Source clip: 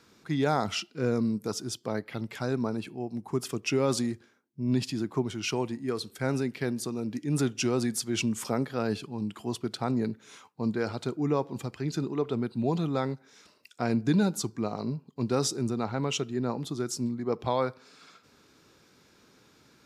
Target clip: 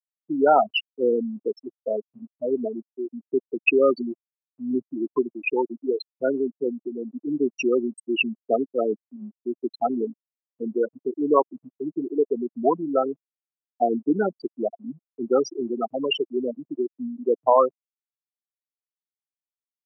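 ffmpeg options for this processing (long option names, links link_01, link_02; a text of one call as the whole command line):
ffmpeg -i in.wav -af "afftfilt=real='re*gte(hypot(re,im),0.141)':imag='im*gte(hypot(re,im),0.141)':win_size=1024:overlap=0.75,highpass=frequency=300:width=0.5412,highpass=frequency=300:width=1.3066,equalizer=frequency=670:width_type=q:width=4:gain=7,equalizer=frequency=1100:width_type=q:width=4:gain=7,equalizer=frequency=2700:width_type=q:width=4:gain=9,equalizer=frequency=5200:width_type=q:width=4:gain=-10,equalizer=frequency=8100:width_type=q:width=4:gain=6,lowpass=frequency=9100:width=0.5412,lowpass=frequency=9100:width=1.3066,volume=8.5dB" out.wav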